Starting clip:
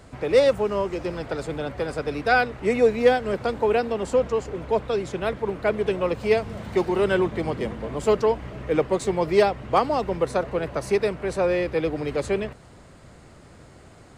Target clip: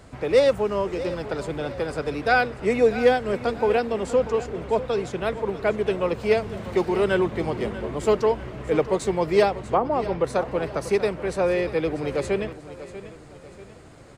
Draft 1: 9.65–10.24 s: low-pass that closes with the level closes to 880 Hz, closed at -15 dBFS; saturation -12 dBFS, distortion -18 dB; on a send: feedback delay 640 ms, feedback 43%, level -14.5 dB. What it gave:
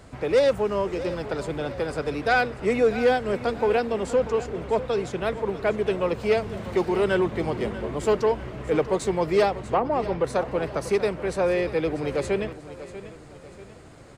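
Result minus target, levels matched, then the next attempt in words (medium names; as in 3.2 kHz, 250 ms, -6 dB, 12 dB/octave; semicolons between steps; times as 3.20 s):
saturation: distortion +20 dB
9.65–10.24 s: low-pass that closes with the level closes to 880 Hz, closed at -15 dBFS; saturation -0.5 dBFS, distortion -38 dB; on a send: feedback delay 640 ms, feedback 43%, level -14.5 dB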